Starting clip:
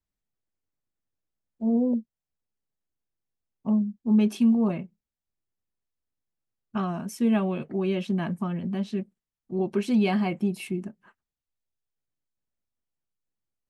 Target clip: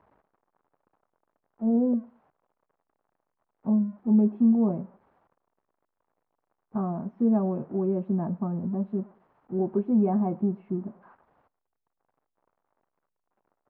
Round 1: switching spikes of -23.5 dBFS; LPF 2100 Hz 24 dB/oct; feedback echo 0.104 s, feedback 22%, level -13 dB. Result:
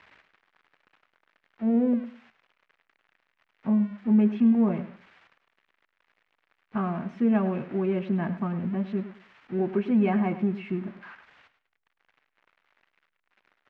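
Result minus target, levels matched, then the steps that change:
2000 Hz band +19.0 dB; echo-to-direct +12 dB
change: LPF 970 Hz 24 dB/oct; change: feedback echo 0.104 s, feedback 22%, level -25 dB

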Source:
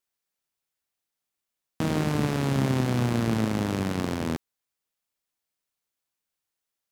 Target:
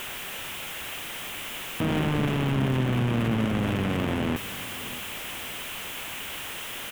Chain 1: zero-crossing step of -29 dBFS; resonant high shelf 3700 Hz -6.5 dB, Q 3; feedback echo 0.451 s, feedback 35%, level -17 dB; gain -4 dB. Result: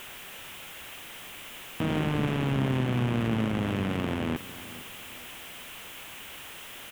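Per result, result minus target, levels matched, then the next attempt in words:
echo 0.181 s early; zero-crossing step: distortion -5 dB
zero-crossing step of -29 dBFS; resonant high shelf 3700 Hz -6.5 dB, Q 3; feedback echo 0.632 s, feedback 35%, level -17 dB; gain -4 dB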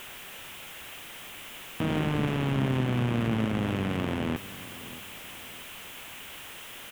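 zero-crossing step: distortion -5 dB
zero-crossing step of -21.5 dBFS; resonant high shelf 3700 Hz -6.5 dB, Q 3; feedback echo 0.632 s, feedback 35%, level -17 dB; gain -4 dB

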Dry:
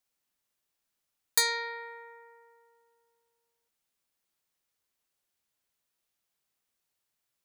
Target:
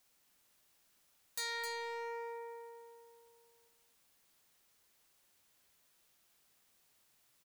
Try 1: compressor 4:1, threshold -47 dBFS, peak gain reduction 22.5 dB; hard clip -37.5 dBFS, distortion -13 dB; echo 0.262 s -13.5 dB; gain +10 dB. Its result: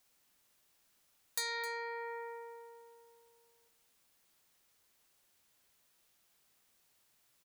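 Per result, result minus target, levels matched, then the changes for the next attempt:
echo-to-direct -6.5 dB; hard clip: distortion -4 dB
change: echo 0.262 s -7 dB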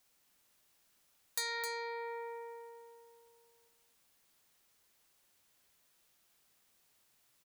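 hard clip: distortion -4 dB
change: hard clip -45 dBFS, distortion -8 dB

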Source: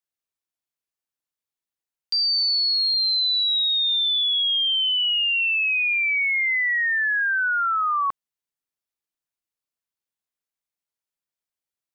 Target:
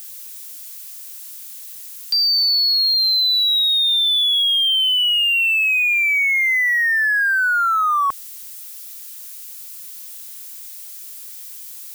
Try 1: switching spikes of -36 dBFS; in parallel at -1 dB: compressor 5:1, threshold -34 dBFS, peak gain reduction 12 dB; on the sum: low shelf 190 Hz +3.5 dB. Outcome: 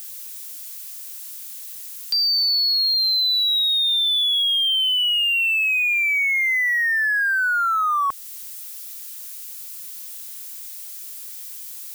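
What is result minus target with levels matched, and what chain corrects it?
compressor: peak gain reduction +9.5 dB
switching spikes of -36 dBFS; in parallel at -1 dB: compressor 5:1, threshold -22 dBFS, peak gain reduction 2.5 dB; on the sum: low shelf 190 Hz +3.5 dB

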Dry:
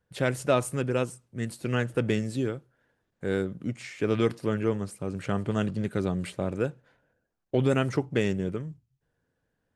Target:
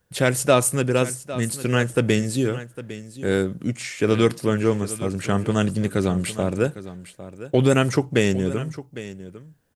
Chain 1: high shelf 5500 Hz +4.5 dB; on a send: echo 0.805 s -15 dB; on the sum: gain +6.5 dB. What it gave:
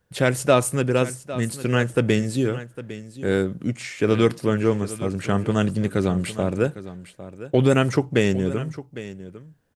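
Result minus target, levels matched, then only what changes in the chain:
8000 Hz band -4.5 dB
change: high shelf 5500 Hz +11.5 dB

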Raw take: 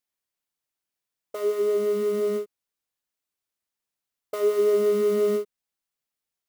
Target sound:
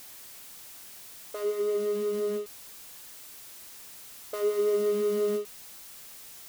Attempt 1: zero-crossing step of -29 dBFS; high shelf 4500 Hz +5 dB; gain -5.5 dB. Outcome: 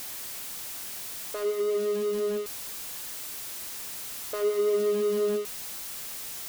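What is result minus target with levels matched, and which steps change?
zero-crossing step: distortion +8 dB
change: zero-crossing step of -38 dBFS

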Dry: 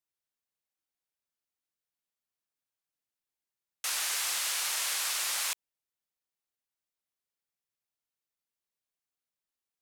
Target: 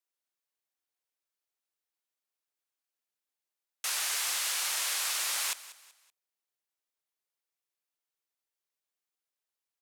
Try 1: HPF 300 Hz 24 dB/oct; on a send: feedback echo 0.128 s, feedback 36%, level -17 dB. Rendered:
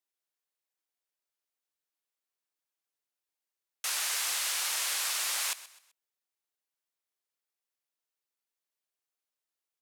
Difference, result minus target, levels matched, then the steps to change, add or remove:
echo 62 ms early
change: feedback echo 0.19 s, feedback 36%, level -17 dB

